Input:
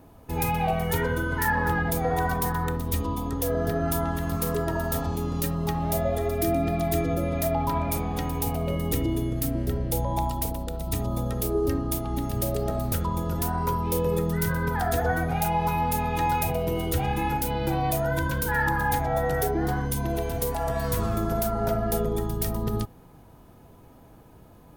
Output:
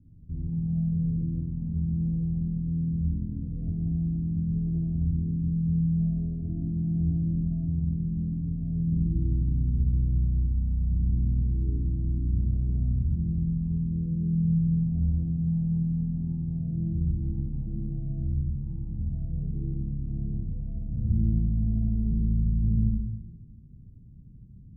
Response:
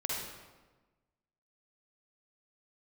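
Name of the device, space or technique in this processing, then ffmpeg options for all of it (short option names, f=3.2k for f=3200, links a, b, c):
club heard from the street: -filter_complex "[0:a]alimiter=limit=-18dB:level=0:latency=1:release=362,lowpass=f=200:w=0.5412,lowpass=f=200:w=1.3066[a];[1:a]atrim=start_sample=2205[b];[a][b]afir=irnorm=-1:irlink=0"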